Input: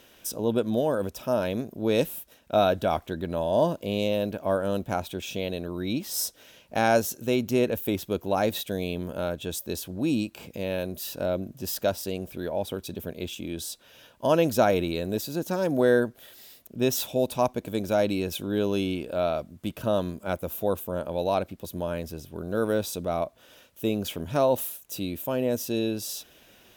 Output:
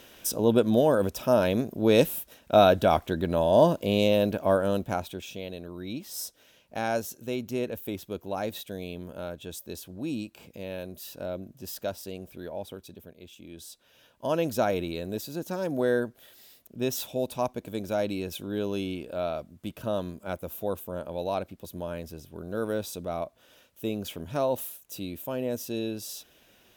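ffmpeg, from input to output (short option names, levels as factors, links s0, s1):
-af "volume=5.31,afade=t=out:st=4.36:d=0.99:silence=0.298538,afade=t=out:st=12.55:d=0.64:silence=0.375837,afade=t=in:st=13.19:d=1.33:silence=0.281838"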